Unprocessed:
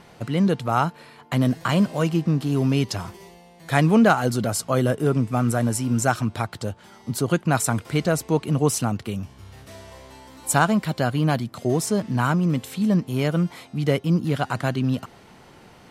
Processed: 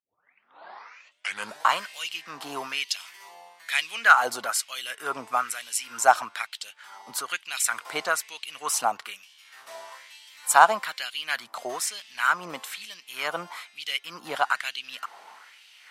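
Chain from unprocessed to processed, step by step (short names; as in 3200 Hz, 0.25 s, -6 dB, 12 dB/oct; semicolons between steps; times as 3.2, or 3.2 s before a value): tape start at the beginning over 1.74 s; LFO high-pass sine 1.1 Hz 800–3000 Hz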